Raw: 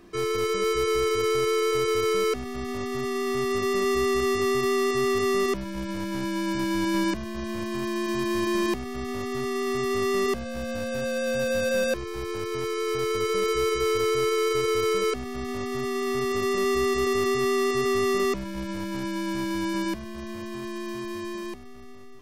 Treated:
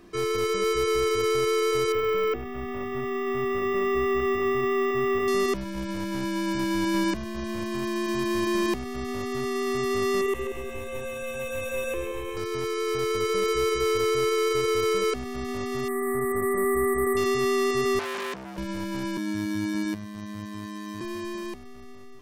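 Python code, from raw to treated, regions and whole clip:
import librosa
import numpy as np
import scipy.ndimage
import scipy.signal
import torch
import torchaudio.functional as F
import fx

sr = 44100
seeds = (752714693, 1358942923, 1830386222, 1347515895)

y = fx.chain(x, sr, fx.savgol(points=25),
    fx.hum_notches(base_hz=50, count=9),
    fx.resample_bad(factor=2, down='filtered', up='hold'), at=(1.92, 5.28))
y = fx.chain(y, sr, fx.fixed_phaser(hz=970.0, stages=8),
    fx.echo_split(split_hz=740.0, low_ms=178, high_ms=134, feedback_pct=52, wet_db=-6.0), at=(10.21, 12.37))
y = fx.chain(y, sr, fx.brickwall_bandstop(low_hz=2200.0, high_hz=7600.0),
    fx.high_shelf(hz=6800.0, db=10.0), at=(15.88, 17.17))
y = fx.chain(y, sr, fx.highpass(hz=76.0, slope=24),
    fx.transformer_sat(knee_hz=2900.0), at=(17.99, 18.58))
y = fx.chain(y, sr, fx.highpass(hz=49.0, slope=12),
    fx.peak_eq(hz=110.0, db=6.5, octaves=1.6),
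    fx.robotise(hz=104.0), at=(19.17, 21.01))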